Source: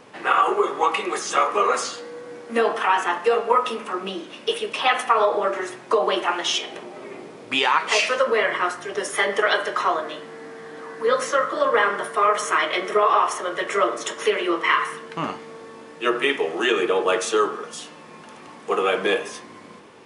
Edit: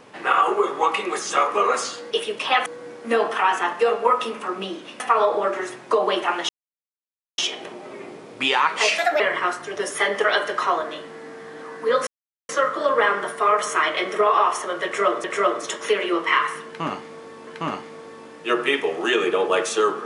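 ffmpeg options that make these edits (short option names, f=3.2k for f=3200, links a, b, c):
-filter_complex "[0:a]asplit=10[a][b][c][d][e][f][g][h][i][j];[a]atrim=end=2.112[k];[b]atrim=start=4.448:end=5.002[l];[c]atrim=start=2.108:end=4.452[m];[d]atrim=start=4.998:end=6.49,asetpts=PTS-STARTPTS,afade=t=out:st=1.488:d=0.004:c=hsin,apad=pad_dur=0.89[n];[e]atrim=start=6.49:end=8.094,asetpts=PTS-STARTPTS,afade=t=in:d=0.004:c=hsin[o];[f]atrim=start=8.09:end=8.38,asetpts=PTS-STARTPTS,asetrate=58212,aresample=44100[p];[g]atrim=start=8.376:end=11.25,asetpts=PTS-STARTPTS,afade=t=out:st=2.87:d=0.004:c=hsin,apad=pad_dur=0.42[q];[h]atrim=start=11.25:end=14.002,asetpts=PTS-STARTPTS,afade=t=in:d=0.004:c=hsin[r];[i]atrim=start=13.608:end=15.842[s];[j]atrim=start=15.028[t];[k][l]acrossfade=d=0.004:c1=hsin:c2=hsin[u];[u][m]acrossfade=d=0.004:c1=hsin:c2=hsin[v];[n][o]concat=n=2:v=0:a=1[w];[v][w]acrossfade=d=0.004:c1=hsin:c2=hsin[x];[x][p]acrossfade=d=0.004:c1=hsin:c2=hsin[y];[q][r]concat=n=2:v=0:a=1[z];[y][z]acrossfade=d=0.004:c1=hsin:c2=hsin[aa];[aa][s]acrossfade=d=0.004:c1=hsin:c2=hsin[ab];[ab][t]acrossfade=d=0.004:c1=hsin:c2=hsin"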